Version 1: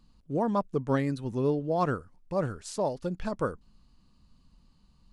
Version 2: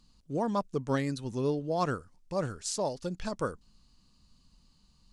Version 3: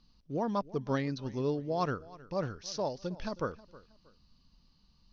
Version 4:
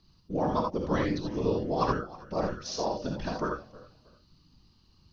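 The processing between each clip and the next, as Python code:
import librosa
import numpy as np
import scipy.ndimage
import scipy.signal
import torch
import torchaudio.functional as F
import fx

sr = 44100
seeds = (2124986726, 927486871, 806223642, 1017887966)

y1 = fx.peak_eq(x, sr, hz=6300.0, db=11.0, octaves=1.9)
y1 = y1 * 10.0 ** (-3.0 / 20.0)
y2 = scipy.signal.sosfilt(scipy.signal.butter(16, 6100.0, 'lowpass', fs=sr, output='sos'), y1)
y2 = fx.echo_feedback(y2, sr, ms=317, feedback_pct=31, wet_db=-20)
y2 = y2 * 10.0 ** (-2.0 / 20.0)
y3 = fx.whisperise(y2, sr, seeds[0])
y3 = fx.rev_gated(y3, sr, seeds[1], gate_ms=100, shape='rising', drr_db=1.5)
y3 = y3 * 10.0 ** (2.0 / 20.0)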